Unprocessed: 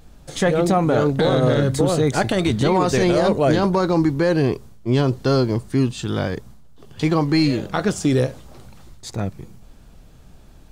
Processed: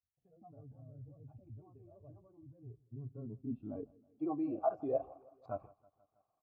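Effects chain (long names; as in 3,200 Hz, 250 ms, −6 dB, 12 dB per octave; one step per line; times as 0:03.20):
time stretch by overlap-add 0.6×, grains 84 ms
downward expander −32 dBFS
reversed playback
downward compressor 6 to 1, threshold −29 dBFS, peak gain reduction 14 dB
reversed playback
brickwall limiter −26 dBFS, peak gain reduction 6.5 dB
formant filter a
noise reduction from a noise print of the clip's start 16 dB
low-pass filter sweep 100 Hz → 1,100 Hz, 0:02.55–0:05.40
repeating echo 161 ms, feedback 60%, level −23.5 dB
level +16.5 dB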